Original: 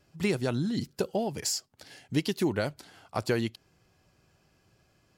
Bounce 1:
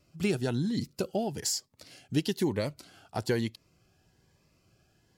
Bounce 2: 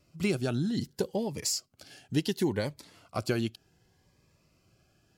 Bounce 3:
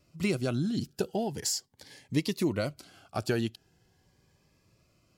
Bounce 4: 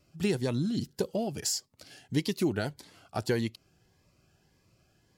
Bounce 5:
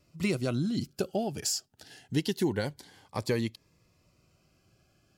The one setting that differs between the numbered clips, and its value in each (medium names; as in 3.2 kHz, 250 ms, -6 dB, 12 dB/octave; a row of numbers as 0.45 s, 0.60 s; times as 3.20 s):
Shepard-style phaser, rate: 1.1 Hz, 0.67 Hz, 0.41 Hz, 1.7 Hz, 0.25 Hz